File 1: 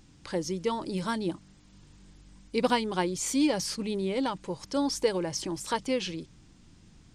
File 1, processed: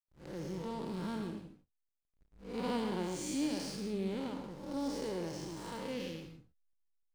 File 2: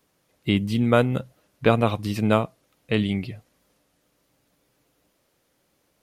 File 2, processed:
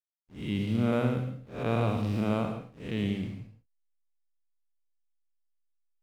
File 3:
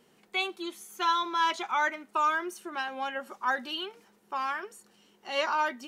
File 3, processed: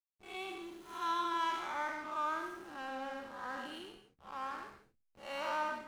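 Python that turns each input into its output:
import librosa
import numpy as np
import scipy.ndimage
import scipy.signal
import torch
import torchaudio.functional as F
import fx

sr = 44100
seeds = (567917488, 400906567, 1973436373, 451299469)

y = fx.spec_blur(x, sr, span_ms=223.0)
y = fx.backlash(y, sr, play_db=-41.0)
y = fx.rev_gated(y, sr, seeds[0], gate_ms=180, shape='rising', drr_db=8.0)
y = y * librosa.db_to_amplitude(-4.5)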